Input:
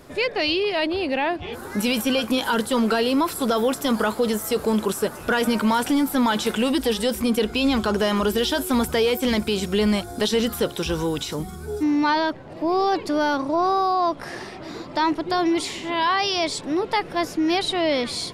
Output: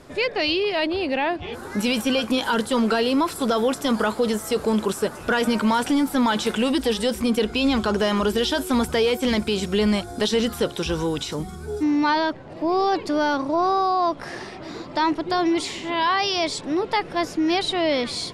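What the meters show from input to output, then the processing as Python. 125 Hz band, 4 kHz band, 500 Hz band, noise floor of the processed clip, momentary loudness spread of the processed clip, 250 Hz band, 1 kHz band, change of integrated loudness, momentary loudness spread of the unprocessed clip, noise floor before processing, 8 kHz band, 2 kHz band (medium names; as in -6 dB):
0.0 dB, 0.0 dB, 0.0 dB, -38 dBFS, 6 LU, 0.0 dB, 0.0 dB, 0.0 dB, 6 LU, -38 dBFS, -1.5 dB, 0.0 dB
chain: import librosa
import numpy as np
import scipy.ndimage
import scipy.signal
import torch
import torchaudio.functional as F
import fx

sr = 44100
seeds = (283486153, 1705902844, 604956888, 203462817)

y = scipy.signal.sosfilt(scipy.signal.butter(2, 9700.0, 'lowpass', fs=sr, output='sos'), x)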